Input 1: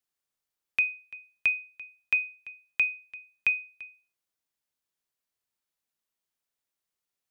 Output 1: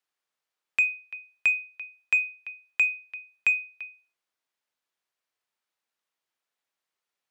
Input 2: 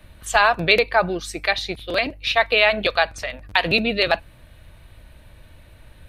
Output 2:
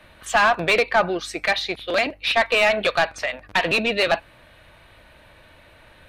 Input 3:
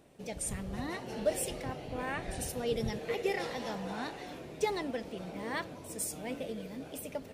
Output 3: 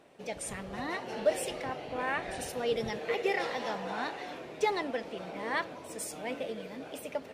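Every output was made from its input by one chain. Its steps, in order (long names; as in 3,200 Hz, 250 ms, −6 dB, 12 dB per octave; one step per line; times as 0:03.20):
mid-hump overdrive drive 19 dB, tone 2,400 Hz, clips at −1 dBFS
level −6 dB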